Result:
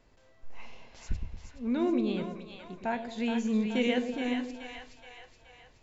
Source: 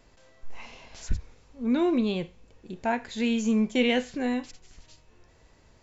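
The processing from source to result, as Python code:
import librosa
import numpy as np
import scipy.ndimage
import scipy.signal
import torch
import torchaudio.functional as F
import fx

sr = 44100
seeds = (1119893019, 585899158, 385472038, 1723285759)

p1 = fx.high_shelf(x, sr, hz=6200.0, db=-8.0)
p2 = p1 + fx.echo_split(p1, sr, split_hz=660.0, low_ms=112, high_ms=423, feedback_pct=52, wet_db=-6, dry=0)
y = F.gain(torch.from_numpy(p2), -5.0).numpy()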